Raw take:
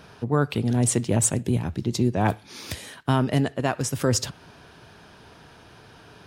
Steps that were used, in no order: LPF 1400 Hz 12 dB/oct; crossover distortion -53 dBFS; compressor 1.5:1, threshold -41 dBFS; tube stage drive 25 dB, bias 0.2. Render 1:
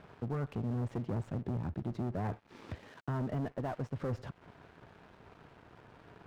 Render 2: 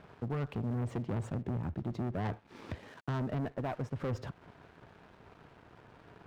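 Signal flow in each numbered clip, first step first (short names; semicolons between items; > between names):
tube stage > compressor > LPF > crossover distortion; LPF > tube stage > crossover distortion > compressor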